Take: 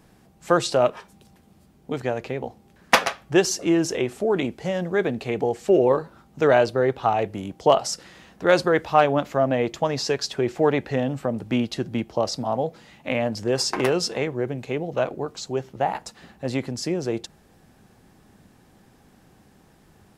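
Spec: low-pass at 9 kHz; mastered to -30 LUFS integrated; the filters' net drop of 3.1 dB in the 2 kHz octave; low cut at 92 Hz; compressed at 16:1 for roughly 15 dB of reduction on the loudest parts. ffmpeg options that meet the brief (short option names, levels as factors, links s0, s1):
-af "highpass=92,lowpass=9000,equalizer=f=2000:t=o:g=-4,acompressor=threshold=0.0447:ratio=16,volume=1.5"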